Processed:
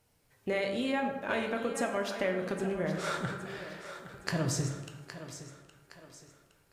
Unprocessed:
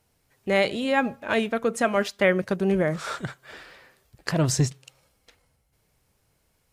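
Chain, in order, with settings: compressor, threshold -27 dBFS, peak gain reduction 11.5 dB; thinning echo 0.815 s, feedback 44%, high-pass 220 Hz, level -11.5 dB; plate-style reverb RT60 1.3 s, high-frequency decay 0.5×, DRR 3 dB; gain -3 dB

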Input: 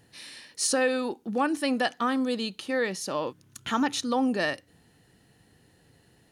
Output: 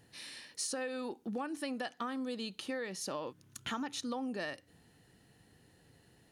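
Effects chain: compressor 6:1, threshold -32 dBFS, peak gain reduction 11.5 dB; gain -3.5 dB

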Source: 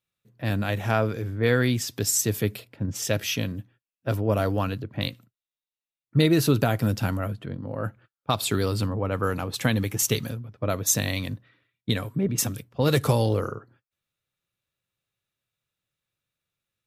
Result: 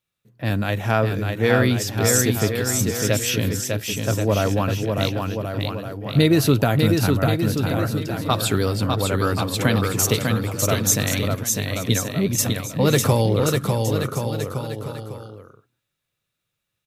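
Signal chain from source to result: bouncing-ball echo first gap 0.6 s, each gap 0.8×, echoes 5; gain +3.5 dB

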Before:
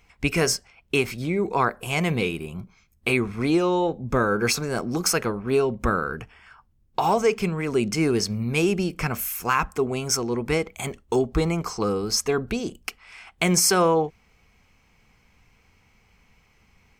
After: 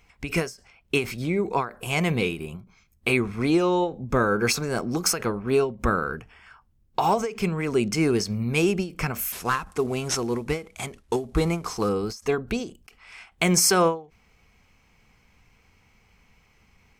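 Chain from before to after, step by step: 9.32–11.89 CVSD 64 kbps; ending taper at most 170 dB/s

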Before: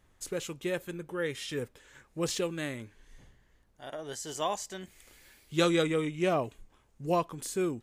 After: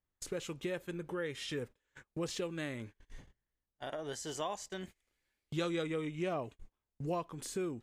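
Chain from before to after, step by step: compressor 2.5:1, threshold -45 dBFS, peak gain reduction 15.5 dB; high shelf 8100 Hz -9 dB; gate -53 dBFS, range -29 dB; gain +5 dB

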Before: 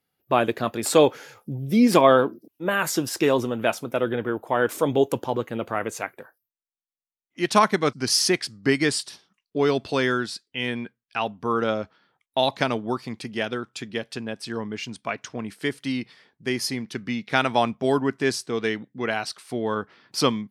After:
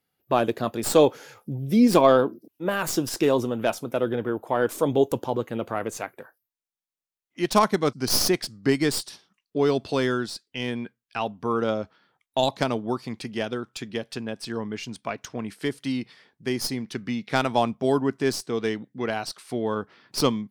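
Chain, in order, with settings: tracing distortion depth 0.058 ms; dynamic EQ 2000 Hz, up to -6 dB, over -39 dBFS, Q 0.9

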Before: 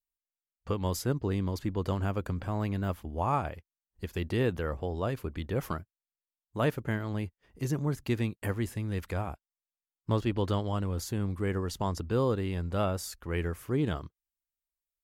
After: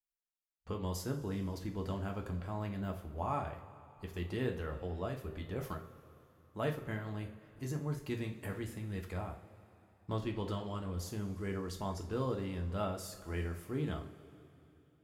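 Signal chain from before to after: two-slope reverb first 0.35 s, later 3.2 s, from -18 dB, DRR 2 dB; gain -9 dB

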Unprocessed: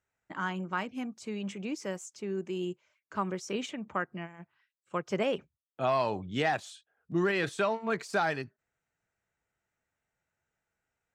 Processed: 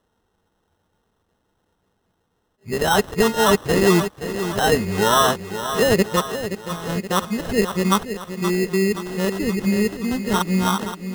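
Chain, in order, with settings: whole clip reversed; high shelf 4400 Hz -8.5 dB; in parallel at +1 dB: compressor, threshold -43 dBFS, peak gain reduction 17.5 dB; on the sum: ripple EQ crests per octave 0.85, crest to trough 9 dB; sample-and-hold 19×; maximiser +14.5 dB; lo-fi delay 0.524 s, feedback 55%, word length 7-bit, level -10 dB; gain -4.5 dB

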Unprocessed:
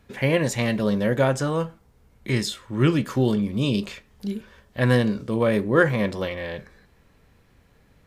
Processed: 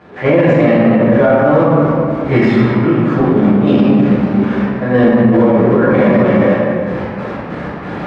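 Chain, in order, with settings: zero-crossing step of -24.5 dBFS; HPF 100 Hz 12 dB/oct; gate -21 dBFS, range -8 dB; LPF 1500 Hz 12 dB/oct; low shelf 130 Hz -10.5 dB; in parallel at +1 dB: vocal rider within 4 dB 0.5 s; on the sum: step gate ".xxxx..x.x.x" 94 bpm -12 dB; reverb RT60 2.1 s, pre-delay 6 ms, DRR -10 dB; maximiser +3.5 dB; attack slew limiter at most 300 dB/s; gain -1 dB

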